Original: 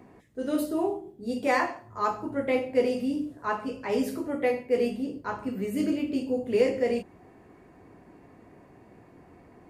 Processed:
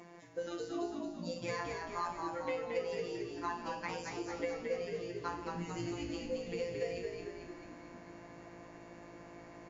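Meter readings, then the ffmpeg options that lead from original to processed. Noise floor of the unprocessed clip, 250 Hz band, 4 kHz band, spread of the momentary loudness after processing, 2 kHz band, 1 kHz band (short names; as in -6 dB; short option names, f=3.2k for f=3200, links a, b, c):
-55 dBFS, -13.5 dB, -5.0 dB, 15 LU, -9.5 dB, -9.0 dB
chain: -filter_complex "[0:a]aemphasis=mode=production:type=bsi,acrossover=split=100[a][b];[b]acompressor=threshold=-39dB:ratio=6[c];[a][c]amix=inputs=2:normalize=0,afftfilt=real='hypot(re,im)*cos(PI*b)':imag='0':win_size=1024:overlap=0.75,asplit=9[d][e][f][g][h][i][j][k][l];[e]adelay=223,afreqshift=-53,volume=-4dB[m];[f]adelay=446,afreqshift=-106,volume=-8.7dB[n];[g]adelay=669,afreqshift=-159,volume=-13.5dB[o];[h]adelay=892,afreqshift=-212,volume=-18.2dB[p];[i]adelay=1115,afreqshift=-265,volume=-22.9dB[q];[j]adelay=1338,afreqshift=-318,volume=-27.7dB[r];[k]adelay=1561,afreqshift=-371,volume=-32.4dB[s];[l]adelay=1784,afreqshift=-424,volume=-37.1dB[t];[d][m][n][o][p][q][r][s][t]amix=inputs=9:normalize=0,volume=5dB" -ar 22050 -c:a mp2 -b:a 96k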